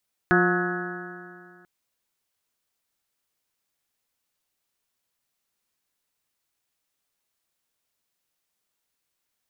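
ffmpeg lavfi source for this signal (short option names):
-f lavfi -i "aevalsrc='0.0794*pow(10,-3*t/2.2)*sin(2*PI*177.12*t)+0.112*pow(10,-3*t/2.2)*sin(2*PI*354.99*t)+0.0112*pow(10,-3*t/2.2)*sin(2*PI*534.33*t)+0.0562*pow(10,-3*t/2.2)*sin(2*PI*715.89*t)+0.0168*pow(10,-3*t/2.2)*sin(2*PI*900.35*t)+0.0224*pow(10,-3*t/2.2)*sin(2*PI*1088.43*t)+0.0562*pow(10,-3*t/2.2)*sin(2*PI*1280.79*t)+0.0794*pow(10,-3*t/2.2)*sin(2*PI*1478.08*t)+0.0794*pow(10,-3*t/2.2)*sin(2*PI*1680.9*t)+0.00944*pow(10,-3*t/2.2)*sin(2*PI*1889.84*t)':d=1.34:s=44100"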